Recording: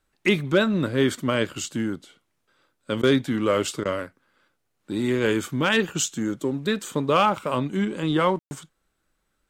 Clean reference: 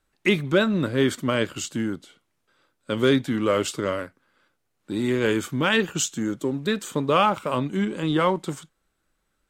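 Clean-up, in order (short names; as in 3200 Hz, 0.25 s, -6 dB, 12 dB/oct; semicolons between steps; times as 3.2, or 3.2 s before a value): clip repair -9.5 dBFS; room tone fill 8.39–8.51; interpolate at 3.02/3.84, 11 ms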